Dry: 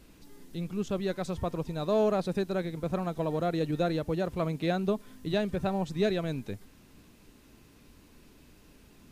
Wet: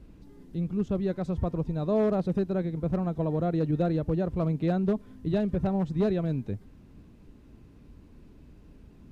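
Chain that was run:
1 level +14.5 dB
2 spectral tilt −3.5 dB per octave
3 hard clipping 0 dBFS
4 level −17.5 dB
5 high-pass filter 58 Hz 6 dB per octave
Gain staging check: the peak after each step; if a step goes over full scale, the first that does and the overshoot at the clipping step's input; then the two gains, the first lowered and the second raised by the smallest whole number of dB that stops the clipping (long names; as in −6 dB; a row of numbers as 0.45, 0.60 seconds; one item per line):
−2.5, +5.0, 0.0, −17.5, −15.5 dBFS
step 2, 5.0 dB
step 1 +9.5 dB, step 4 −12.5 dB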